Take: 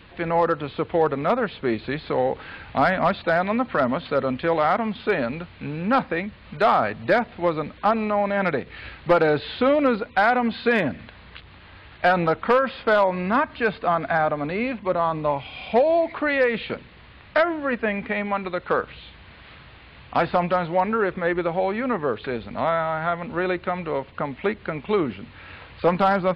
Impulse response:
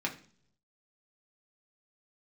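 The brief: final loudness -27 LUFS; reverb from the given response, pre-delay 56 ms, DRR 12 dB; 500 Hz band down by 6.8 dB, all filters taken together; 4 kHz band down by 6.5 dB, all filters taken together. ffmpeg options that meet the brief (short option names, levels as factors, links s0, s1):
-filter_complex "[0:a]equalizer=f=500:t=o:g=-8.5,equalizer=f=4000:t=o:g=-8.5,asplit=2[s0][s1];[1:a]atrim=start_sample=2205,adelay=56[s2];[s1][s2]afir=irnorm=-1:irlink=0,volume=0.141[s3];[s0][s3]amix=inputs=2:normalize=0,volume=0.944"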